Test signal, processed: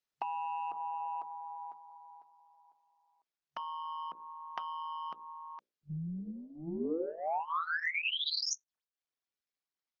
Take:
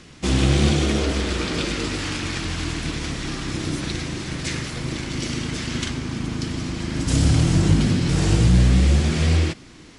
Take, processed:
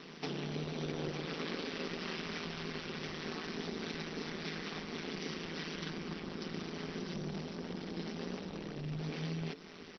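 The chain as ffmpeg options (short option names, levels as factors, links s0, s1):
-filter_complex "[0:a]acrossover=split=460[s0][s1];[s1]acompressor=threshold=0.0562:ratio=4[s2];[s0][s2]amix=inputs=2:normalize=0,asoftclip=type=tanh:threshold=0.0891,bandreject=f=60:t=h:w=6,bandreject=f=120:t=h:w=6,bandreject=f=180:t=h:w=6,bandreject=f=240:t=h:w=6,bandreject=f=300:t=h:w=6,bandreject=f=360:t=h:w=6,bandreject=f=420:t=h:w=6,bandreject=f=480:t=h:w=6,bandreject=f=540:t=h:w=6,acompressor=threshold=0.0251:ratio=20,aecho=1:1:2.6:0.73,aeval=exprs='val(0)*sin(2*PI*81*n/s)':c=same,afftfilt=real='re*between(b*sr/4096,140,6000)':imag='im*between(b*sr/4096,140,6000)':win_size=4096:overlap=0.75" -ar 48000 -c:a libopus -b:a 16k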